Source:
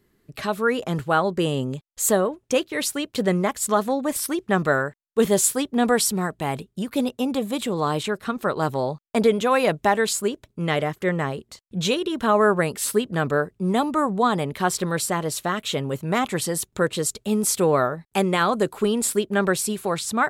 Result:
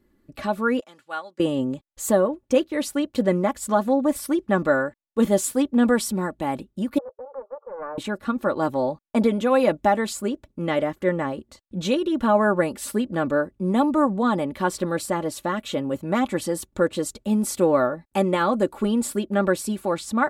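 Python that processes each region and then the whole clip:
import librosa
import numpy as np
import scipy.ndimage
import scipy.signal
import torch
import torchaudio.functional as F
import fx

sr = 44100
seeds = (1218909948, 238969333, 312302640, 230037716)

y = fx.chain(x, sr, fx.bandpass_q(hz=5000.0, q=0.57),
    fx.upward_expand(threshold_db=-41.0, expansion=1.5), at=(0.8, 1.4))
y = fx.chain(y, sr, fx.level_steps(step_db=15),
    fx.brickwall_bandpass(low_hz=400.0, high_hz=1400.0),
    fx.doppler_dist(depth_ms=0.23), at=(6.98, 7.98))
y = fx.tilt_shelf(y, sr, db=5.0, hz=1400.0)
y = y + 0.63 * np.pad(y, (int(3.5 * sr / 1000.0), 0))[:len(y)]
y = y * 10.0 ** (-4.0 / 20.0)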